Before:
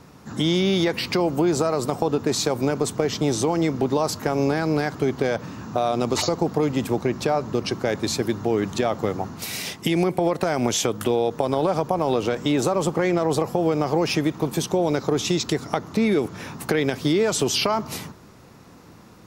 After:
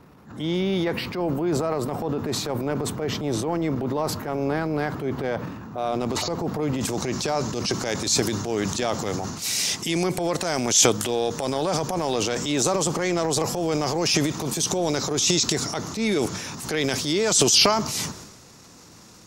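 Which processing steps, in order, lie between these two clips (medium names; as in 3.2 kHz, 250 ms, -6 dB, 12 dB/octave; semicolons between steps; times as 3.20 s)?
peaking EQ 6.5 kHz -9 dB 1.7 oct, from 5.79 s -3 dB, from 6.81 s +14.5 dB; transient shaper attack -8 dB, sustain +8 dB; trim -3 dB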